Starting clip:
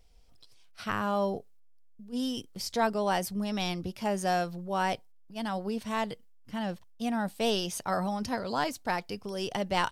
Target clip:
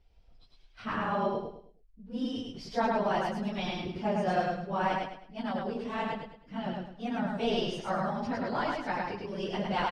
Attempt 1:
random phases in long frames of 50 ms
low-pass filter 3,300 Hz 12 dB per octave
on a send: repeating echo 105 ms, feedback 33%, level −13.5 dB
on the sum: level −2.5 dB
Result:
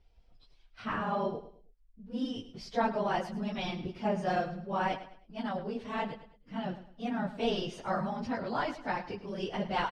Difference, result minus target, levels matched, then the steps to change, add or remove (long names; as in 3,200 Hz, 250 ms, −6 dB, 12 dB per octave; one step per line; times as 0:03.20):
echo-to-direct −11.5 dB
change: repeating echo 105 ms, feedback 33%, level −2 dB